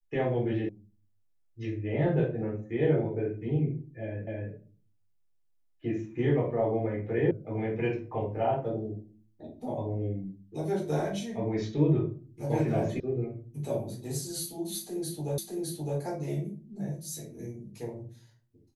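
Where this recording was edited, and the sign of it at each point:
0:00.69: cut off before it has died away
0:04.27: the same again, the last 0.26 s
0:07.31: cut off before it has died away
0:13.00: cut off before it has died away
0:15.38: the same again, the last 0.61 s

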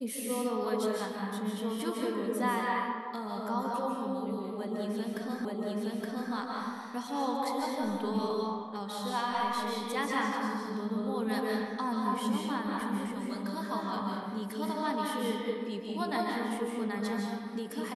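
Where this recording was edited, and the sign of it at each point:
0:05.45: the same again, the last 0.87 s

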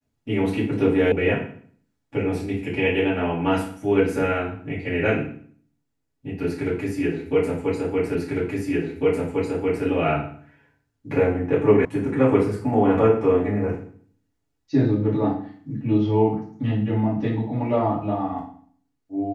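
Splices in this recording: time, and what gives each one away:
0:01.12: cut off before it has died away
0:08.15: the same again, the last 1.7 s
0:11.85: cut off before it has died away

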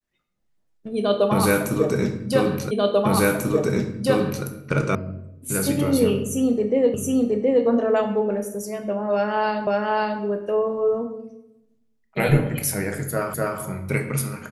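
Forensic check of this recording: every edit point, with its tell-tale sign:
0:02.71: the same again, the last 1.74 s
0:04.95: cut off before it has died away
0:06.94: the same again, the last 0.72 s
0:09.67: the same again, the last 0.54 s
0:13.34: the same again, the last 0.25 s

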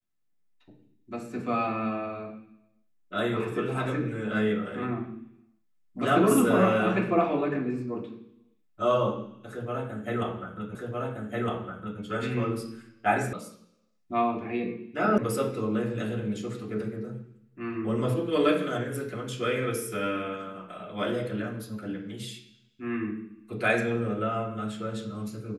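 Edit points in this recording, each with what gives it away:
0:10.75: the same again, the last 1.26 s
0:13.33: cut off before it has died away
0:15.18: cut off before it has died away

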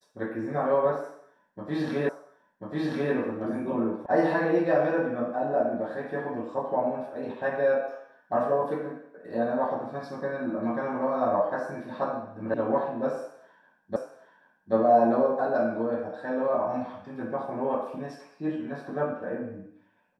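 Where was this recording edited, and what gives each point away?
0:02.09: the same again, the last 1.04 s
0:04.06: cut off before it has died away
0:12.54: cut off before it has died away
0:13.96: the same again, the last 0.78 s

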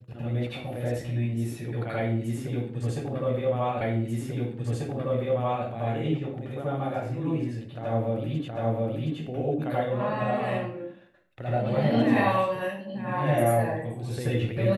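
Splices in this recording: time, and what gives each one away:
0:03.81: the same again, the last 1.84 s
0:08.48: the same again, the last 0.72 s

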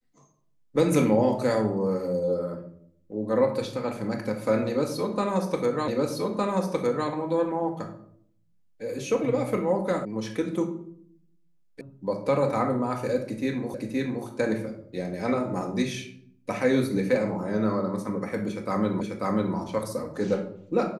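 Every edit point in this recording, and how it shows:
0:05.88: the same again, the last 1.21 s
0:10.05: cut off before it has died away
0:11.81: cut off before it has died away
0:13.74: the same again, the last 0.52 s
0:19.01: the same again, the last 0.54 s

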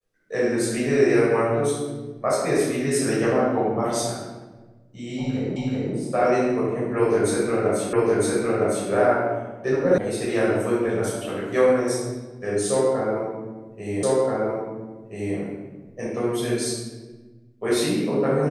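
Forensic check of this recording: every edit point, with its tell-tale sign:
0:05.56: the same again, the last 0.38 s
0:07.93: the same again, the last 0.96 s
0:09.98: cut off before it has died away
0:14.03: the same again, the last 1.33 s

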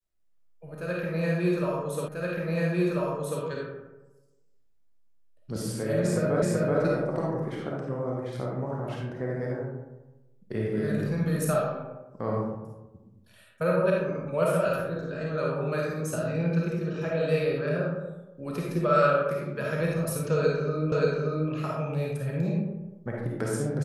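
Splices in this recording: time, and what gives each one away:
0:02.08: the same again, the last 1.34 s
0:06.42: the same again, the last 0.38 s
0:20.92: the same again, the last 0.58 s

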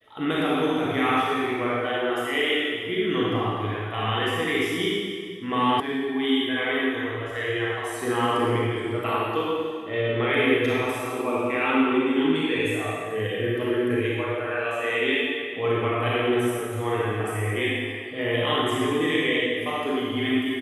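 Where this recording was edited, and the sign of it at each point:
0:05.80: cut off before it has died away

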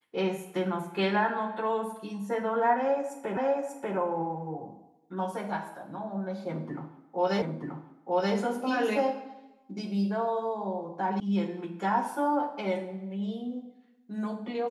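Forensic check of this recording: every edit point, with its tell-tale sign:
0:03.37: the same again, the last 0.59 s
0:07.42: the same again, the last 0.93 s
0:11.20: cut off before it has died away

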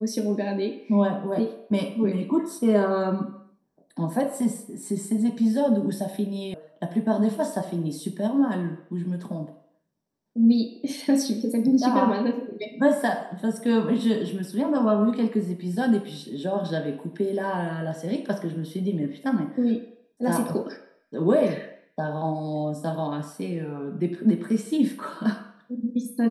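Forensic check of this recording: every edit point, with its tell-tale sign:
0:06.54: cut off before it has died away

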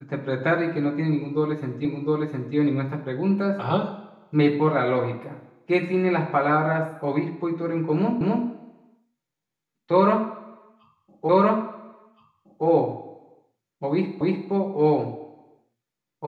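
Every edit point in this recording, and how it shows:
0:01.85: the same again, the last 0.71 s
0:08.21: the same again, the last 0.26 s
0:11.29: the same again, the last 1.37 s
0:14.21: the same again, the last 0.3 s

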